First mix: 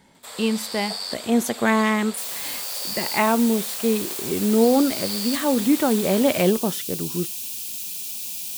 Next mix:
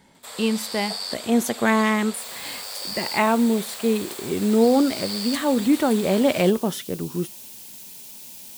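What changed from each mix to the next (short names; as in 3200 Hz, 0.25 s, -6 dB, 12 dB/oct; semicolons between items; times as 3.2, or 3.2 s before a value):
second sound -9.5 dB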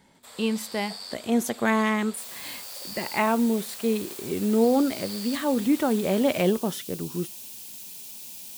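speech -3.5 dB; first sound -8.5 dB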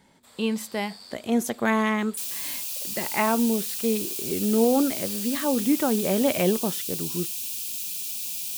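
first sound -7.0 dB; second sound +9.0 dB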